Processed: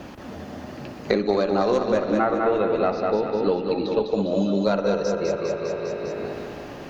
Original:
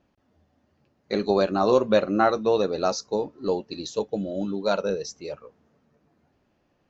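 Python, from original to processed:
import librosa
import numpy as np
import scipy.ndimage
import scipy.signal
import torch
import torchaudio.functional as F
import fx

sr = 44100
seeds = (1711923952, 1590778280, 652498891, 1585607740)

y = fx.cheby_harmonics(x, sr, harmonics=(4,), levels_db=(-22,), full_scale_db=-6.0)
y = fx.lowpass(y, sr, hz=fx.line((1.8, 2000.0), (4.13, 3600.0)), slope=24, at=(1.8, 4.13), fade=0.02)
y = fx.echo_feedback(y, sr, ms=201, feedback_pct=43, wet_db=-6.0)
y = fx.rev_spring(y, sr, rt60_s=2.1, pass_ms=(55,), chirp_ms=75, drr_db=9.0)
y = fx.band_squash(y, sr, depth_pct=100)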